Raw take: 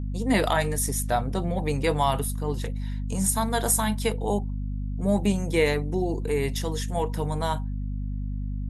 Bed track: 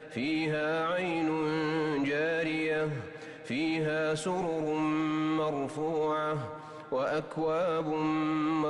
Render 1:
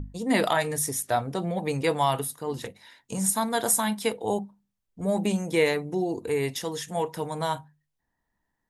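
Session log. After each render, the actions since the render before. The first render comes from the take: notches 50/100/150/200/250 Hz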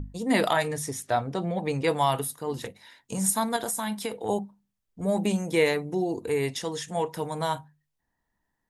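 0.68–1.88 air absorption 51 m; 3.56–4.29 compressor, threshold -26 dBFS; 6.49–7.11 LPF 9900 Hz 24 dB/oct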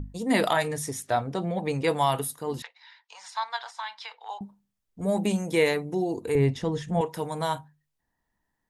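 2.62–4.41 elliptic band-pass 880–4900 Hz, stop band 70 dB; 6.35–7.01 RIAA curve playback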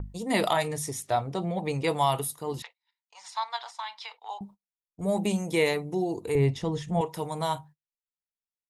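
thirty-one-band EQ 250 Hz -7 dB, 500 Hz -3 dB, 1600 Hz -8 dB; gate -48 dBFS, range -33 dB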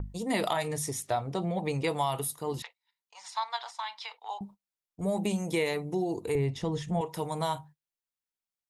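compressor 3:1, threshold -26 dBFS, peak gain reduction 6.5 dB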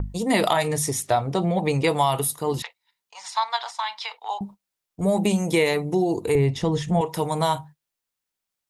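gain +8.5 dB

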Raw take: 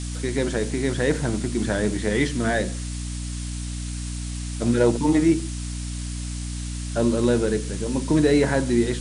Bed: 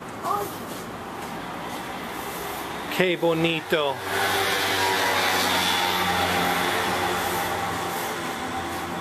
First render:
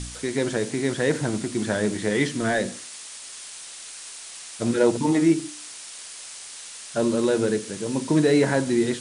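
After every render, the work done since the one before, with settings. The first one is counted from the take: de-hum 60 Hz, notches 5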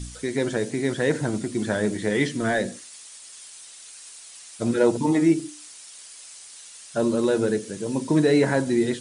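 denoiser 8 dB, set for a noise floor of -40 dBFS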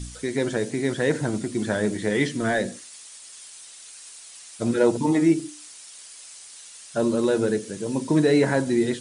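nothing audible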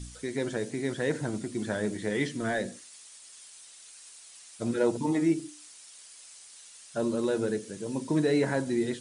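gain -6.5 dB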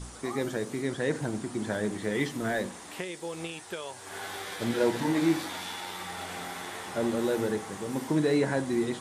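add bed -15.5 dB

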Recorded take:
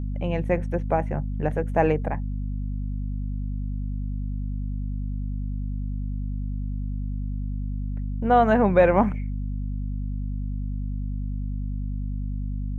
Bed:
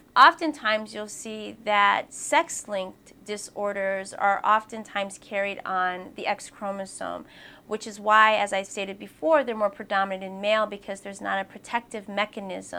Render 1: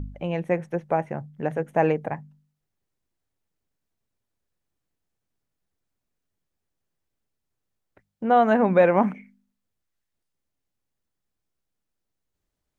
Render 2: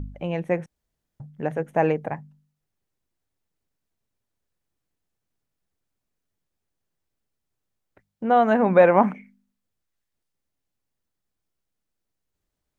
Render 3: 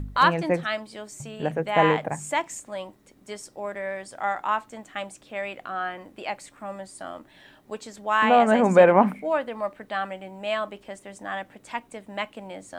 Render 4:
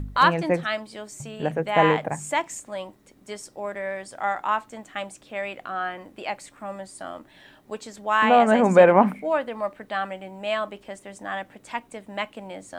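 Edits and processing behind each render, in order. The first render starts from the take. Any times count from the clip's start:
de-hum 50 Hz, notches 5
0.66–1.2 room tone; 8.66–9.17 bell 950 Hz +4.5 dB 1.9 oct
add bed -4.5 dB
gain +1 dB

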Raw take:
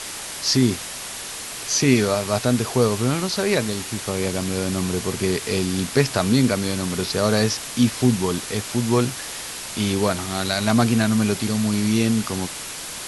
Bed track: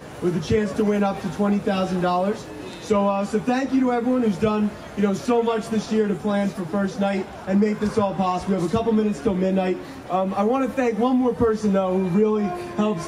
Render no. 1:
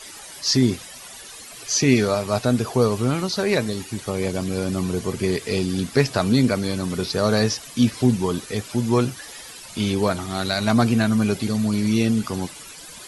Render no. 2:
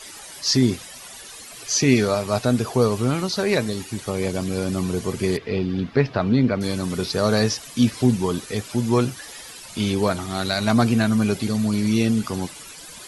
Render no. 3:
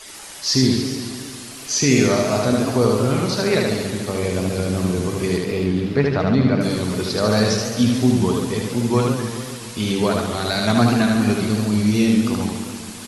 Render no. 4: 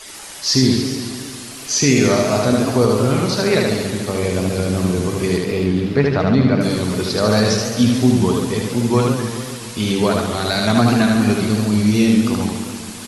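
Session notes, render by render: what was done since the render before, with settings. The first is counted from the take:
denoiser 13 dB, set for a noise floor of -33 dBFS
5.37–6.61 air absorption 290 m
echo 76 ms -3 dB; warbling echo 0.142 s, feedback 65%, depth 176 cents, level -8 dB
gain +2.5 dB; limiter -3 dBFS, peak gain reduction 2.5 dB

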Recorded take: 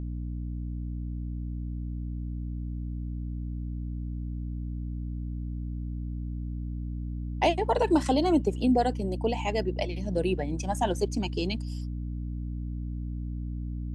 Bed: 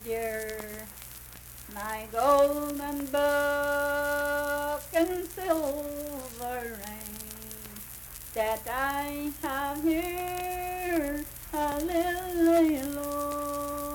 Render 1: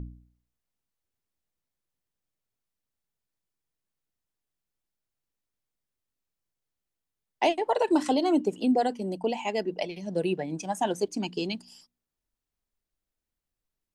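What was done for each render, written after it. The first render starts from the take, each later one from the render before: de-hum 60 Hz, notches 5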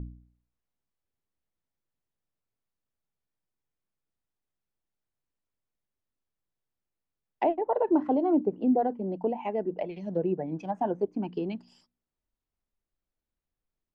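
LPF 1600 Hz 6 dB/oct; treble ducked by the level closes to 1100 Hz, closed at -26 dBFS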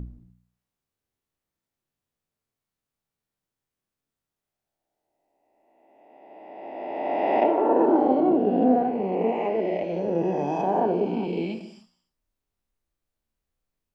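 spectral swells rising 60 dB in 2.27 s; non-linear reverb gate 0.32 s falling, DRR 6 dB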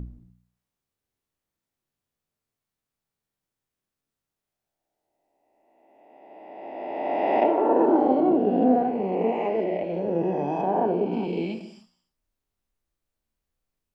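9.64–11.12 air absorption 160 m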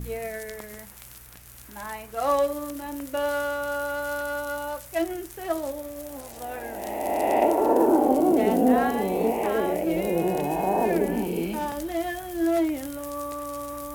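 add bed -1 dB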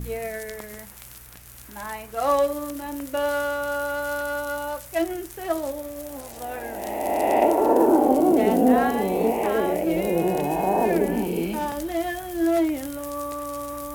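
gain +2 dB

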